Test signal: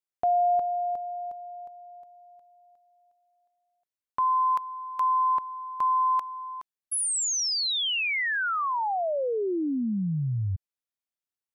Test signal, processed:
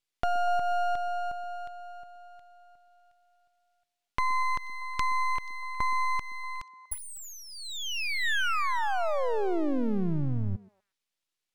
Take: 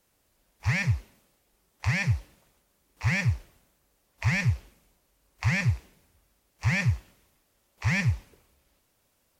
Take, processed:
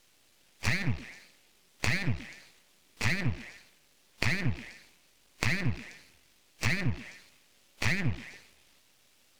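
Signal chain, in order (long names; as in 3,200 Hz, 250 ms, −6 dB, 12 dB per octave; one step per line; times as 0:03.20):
meter weighting curve D
treble cut that deepens with the level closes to 1,100 Hz, closed at −16.5 dBFS
low-shelf EQ 320 Hz +6.5 dB
downward compressor 6 to 1, threshold −26 dBFS
half-wave rectification
echo through a band-pass that steps 121 ms, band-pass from 290 Hz, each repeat 1.4 octaves, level −10.5 dB
level +4.5 dB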